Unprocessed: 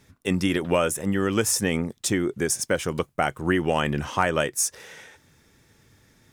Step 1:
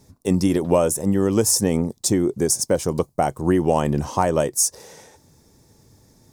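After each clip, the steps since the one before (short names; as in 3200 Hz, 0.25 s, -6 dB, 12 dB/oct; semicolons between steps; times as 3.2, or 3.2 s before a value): band shelf 2100 Hz -13 dB; gain +5 dB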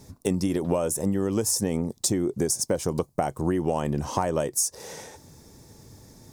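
compressor 4:1, threshold -28 dBFS, peak gain reduction 13.5 dB; gain +4.5 dB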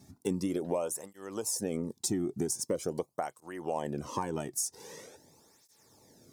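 tape flanging out of phase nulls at 0.44 Hz, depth 2.1 ms; gain -5 dB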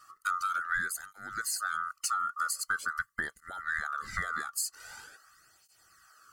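band-swap scrambler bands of 1000 Hz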